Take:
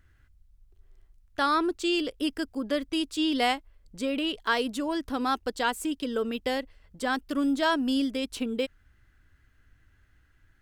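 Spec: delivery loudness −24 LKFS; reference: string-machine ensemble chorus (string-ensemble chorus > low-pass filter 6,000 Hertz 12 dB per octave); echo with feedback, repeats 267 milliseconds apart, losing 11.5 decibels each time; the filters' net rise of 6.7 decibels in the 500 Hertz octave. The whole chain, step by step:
parametric band 500 Hz +8 dB
repeating echo 267 ms, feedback 27%, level −11.5 dB
string-ensemble chorus
low-pass filter 6,000 Hz 12 dB per octave
level +5 dB

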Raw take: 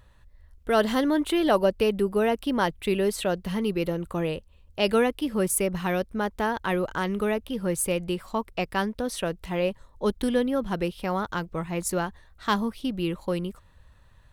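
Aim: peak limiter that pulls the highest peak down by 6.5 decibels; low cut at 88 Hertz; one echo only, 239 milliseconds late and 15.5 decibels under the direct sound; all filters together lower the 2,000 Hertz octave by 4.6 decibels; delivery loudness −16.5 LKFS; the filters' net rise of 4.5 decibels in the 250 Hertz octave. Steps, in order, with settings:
high-pass filter 88 Hz
parametric band 250 Hz +6 dB
parametric band 2,000 Hz −6.5 dB
brickwall limiter −15 dBFS
single-tap delay 239 ms −15.5 dB
level +9 dB

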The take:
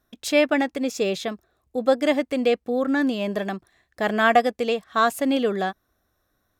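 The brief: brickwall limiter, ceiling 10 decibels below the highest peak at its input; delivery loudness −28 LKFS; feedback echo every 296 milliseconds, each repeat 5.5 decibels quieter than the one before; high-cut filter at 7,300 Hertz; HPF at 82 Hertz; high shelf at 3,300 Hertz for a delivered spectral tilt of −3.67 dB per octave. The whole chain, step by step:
high-pass filter 82 Hz
low-pass filter 7,300 Hz
high-shelf EQ 3,300 Hz +8 dB
brickwall limiter −14 dBFS
repeating echo 296 ms, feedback 53%, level −5.5 dB
level −4 dB

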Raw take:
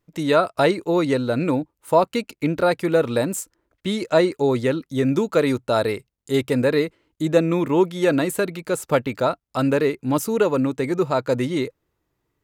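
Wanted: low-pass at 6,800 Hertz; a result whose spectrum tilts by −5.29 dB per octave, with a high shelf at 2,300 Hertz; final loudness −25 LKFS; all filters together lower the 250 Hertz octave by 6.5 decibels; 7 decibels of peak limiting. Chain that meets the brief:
low-pass filter 6,800 Hz
parametric band 250 Hz −9 dB
high-shelf EQ 2,300 Hz −4.5 dB
level +1 dB
brickwall limiter −12.5 dBFS

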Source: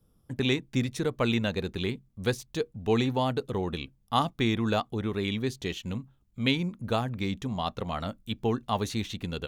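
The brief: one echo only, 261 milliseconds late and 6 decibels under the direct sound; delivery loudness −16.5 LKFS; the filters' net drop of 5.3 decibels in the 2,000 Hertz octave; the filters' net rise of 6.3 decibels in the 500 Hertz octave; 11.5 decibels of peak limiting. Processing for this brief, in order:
parametric band 500 Hz +8 dB
parametric band 2,000 Hz −7.5 dB
brickwall limiter −20.5 dBFS
single-tap delay 261 ms −6 dB
level +14.5 dB

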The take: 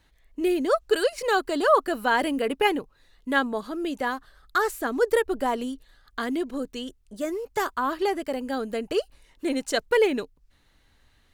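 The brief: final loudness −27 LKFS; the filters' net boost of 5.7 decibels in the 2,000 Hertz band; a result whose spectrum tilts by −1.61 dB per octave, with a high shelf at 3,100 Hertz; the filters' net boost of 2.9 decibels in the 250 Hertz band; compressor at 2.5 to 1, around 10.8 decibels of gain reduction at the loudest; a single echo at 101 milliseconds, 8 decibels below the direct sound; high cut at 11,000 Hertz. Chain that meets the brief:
low-pass filter 11,000 Hz
parametric band 250 Hz +3.5 dB
parametric band 2,000 Hz +8.5 dB
high-shelf EQ 3,100 Hz −3.5 dB
downward compressor 2.5 to 1, threshold −30 dBFS
single-tap delay 101 ms −8 dB
level +4 dB

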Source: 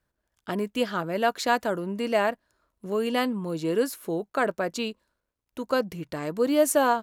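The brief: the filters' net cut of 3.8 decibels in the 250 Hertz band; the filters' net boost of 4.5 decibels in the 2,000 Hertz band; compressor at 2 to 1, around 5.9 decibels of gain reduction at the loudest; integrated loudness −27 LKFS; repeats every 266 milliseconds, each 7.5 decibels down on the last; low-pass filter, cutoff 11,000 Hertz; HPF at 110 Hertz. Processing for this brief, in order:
high-pass filter 110 Hz
low-pass filter 11,000 Hz
parametric band 250 Hz −4.5 dB
parametric band 2,000 Hz +6 dB
downward compressor 2 to 1, threshold −27 dBFS
repeating echo 266 ms, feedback 42%, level −7.5 dB
level +3 dB

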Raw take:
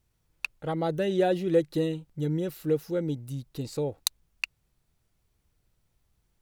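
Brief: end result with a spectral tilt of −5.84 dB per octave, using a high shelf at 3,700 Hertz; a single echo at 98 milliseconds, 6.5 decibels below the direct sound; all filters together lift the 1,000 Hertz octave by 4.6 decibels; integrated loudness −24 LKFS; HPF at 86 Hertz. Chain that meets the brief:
high-pass filter 86 Hz
parametric band 1,000 Hz +7.5 dB
high-shelf EQ 3,700 Hz −6 dB
single-tap delay 98 ms −6.5 dB
level +4 dB

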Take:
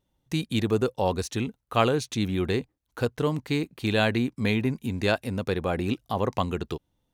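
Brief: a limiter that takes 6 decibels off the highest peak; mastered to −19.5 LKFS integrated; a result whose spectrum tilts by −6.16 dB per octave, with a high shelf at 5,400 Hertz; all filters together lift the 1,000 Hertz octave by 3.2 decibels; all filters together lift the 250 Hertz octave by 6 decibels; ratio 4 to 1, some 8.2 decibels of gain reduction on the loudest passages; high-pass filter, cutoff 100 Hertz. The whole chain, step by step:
high-pass filter 100 Hz
parametric band 250 Hz +7.5 dB
parametric band 1,000 Hz +4 dB
high-shelf EQ 5,400 Hz −7 dB
downward compressor 4 to 1, threshold −25 dBFS
level +11.5 dB
brickwall limiter −6.5 dBFS

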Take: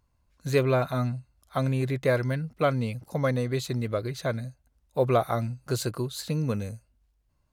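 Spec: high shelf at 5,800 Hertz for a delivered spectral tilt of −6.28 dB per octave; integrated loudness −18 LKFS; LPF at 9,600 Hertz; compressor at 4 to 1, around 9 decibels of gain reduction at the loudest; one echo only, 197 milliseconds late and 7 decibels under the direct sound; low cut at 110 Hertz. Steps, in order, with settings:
high-pass filter 110 Hz
low-pass filter 9,600 Hz
high-shelf EQ 5,800 Hz −6.5 dB
downward compressor 4 to 1, threshold −29 dBFS
single-tap delay 197 ms −7 dB
level +16 dB

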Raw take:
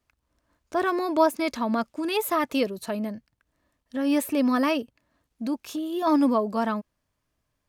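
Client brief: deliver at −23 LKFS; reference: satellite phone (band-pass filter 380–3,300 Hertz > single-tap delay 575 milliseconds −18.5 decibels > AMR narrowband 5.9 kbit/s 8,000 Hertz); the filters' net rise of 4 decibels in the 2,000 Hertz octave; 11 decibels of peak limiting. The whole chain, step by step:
parametric band 2,000 Hz +6 dB
brickwall limiter −19 dBFS
band-pass filter 380–3,300 Hz
single-tap delay 575 ms −18.5 dB
level +9.5 dB
AMR narrowband 5.9 kbit/s 8,000 Hz

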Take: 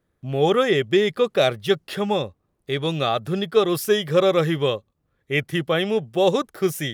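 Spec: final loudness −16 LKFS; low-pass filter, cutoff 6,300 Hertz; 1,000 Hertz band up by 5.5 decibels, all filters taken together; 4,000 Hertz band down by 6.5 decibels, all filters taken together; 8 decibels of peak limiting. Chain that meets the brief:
low-pass filter 6,300 Hz
parametric band 1,000 Hz +8 dB
parametric band 4,000 Hz −8.5 dB
level +7 dB
brickwall limiter −5 dBFS

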